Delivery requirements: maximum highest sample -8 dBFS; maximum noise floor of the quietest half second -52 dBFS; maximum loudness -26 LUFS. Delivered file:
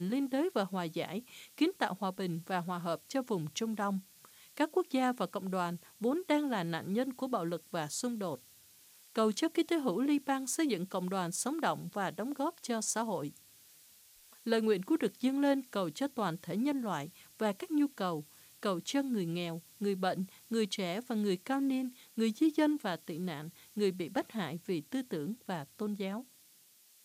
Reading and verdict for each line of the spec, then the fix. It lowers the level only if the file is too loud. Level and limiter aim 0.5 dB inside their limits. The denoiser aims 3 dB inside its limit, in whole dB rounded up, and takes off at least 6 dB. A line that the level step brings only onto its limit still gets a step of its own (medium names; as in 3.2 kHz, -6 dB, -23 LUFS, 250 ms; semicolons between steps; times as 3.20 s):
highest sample -17.5 dBFS: pass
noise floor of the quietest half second -63 dBFS: pass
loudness -34.5 LUFS: pass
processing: none needed